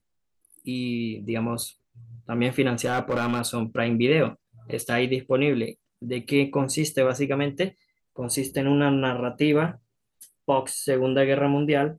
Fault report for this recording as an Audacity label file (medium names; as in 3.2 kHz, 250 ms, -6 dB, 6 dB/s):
2.850000	3.410000	clipped -20 dBFS